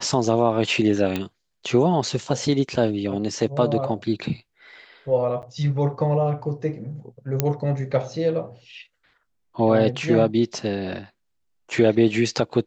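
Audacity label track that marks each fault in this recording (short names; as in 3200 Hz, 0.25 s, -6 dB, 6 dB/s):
1.160000	1.160000	pop -12 dBFS
5.420000	5.430000	gap 9.2 ms
7.400000	7.400000	pop -5 dBFS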